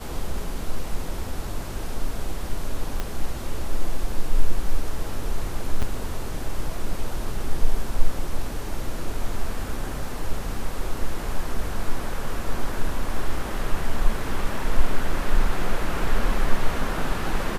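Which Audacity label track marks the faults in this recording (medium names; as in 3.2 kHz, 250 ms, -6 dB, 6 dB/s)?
3.000000	3.000000	pop -13 dBFS
5.820000	5.830000	dropout 6.1 ms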